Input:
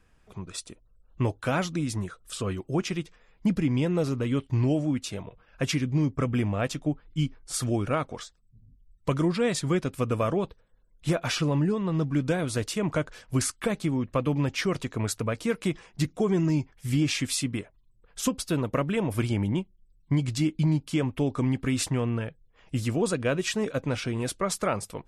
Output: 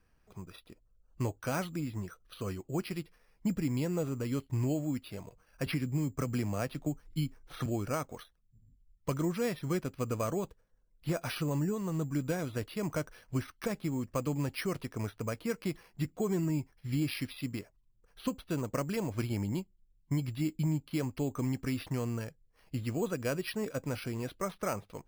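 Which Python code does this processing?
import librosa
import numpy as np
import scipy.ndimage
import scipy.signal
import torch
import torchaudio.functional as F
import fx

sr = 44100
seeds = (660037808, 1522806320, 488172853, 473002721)

y = np.repeat(scipy.signal.resample_poly(x, 1, 6), 6)[:len(x)]
y = fx.band_squash(y, sr, depth_pct=70, at=(5.66, 7.66))
y = y * 10.0 ** (-7.0 / 20.0)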